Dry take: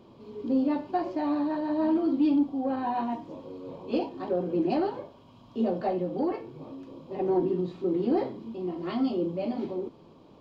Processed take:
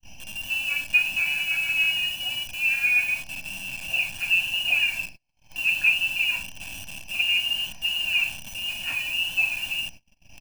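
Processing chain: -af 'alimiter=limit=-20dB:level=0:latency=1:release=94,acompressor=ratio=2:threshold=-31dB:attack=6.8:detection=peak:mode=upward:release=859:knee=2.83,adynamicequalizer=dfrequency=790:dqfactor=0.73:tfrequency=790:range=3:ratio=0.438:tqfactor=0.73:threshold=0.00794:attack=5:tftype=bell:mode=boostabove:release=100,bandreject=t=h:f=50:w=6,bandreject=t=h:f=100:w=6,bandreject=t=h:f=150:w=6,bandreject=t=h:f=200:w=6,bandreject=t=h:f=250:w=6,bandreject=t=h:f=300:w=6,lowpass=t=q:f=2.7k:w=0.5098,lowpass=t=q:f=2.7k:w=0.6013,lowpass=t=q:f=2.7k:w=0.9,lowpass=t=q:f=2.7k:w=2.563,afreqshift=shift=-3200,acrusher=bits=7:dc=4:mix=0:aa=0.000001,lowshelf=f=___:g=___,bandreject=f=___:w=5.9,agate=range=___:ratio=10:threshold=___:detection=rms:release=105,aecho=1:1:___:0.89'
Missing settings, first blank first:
500, 5.5, 2k, -31dB, -45dB, 1.2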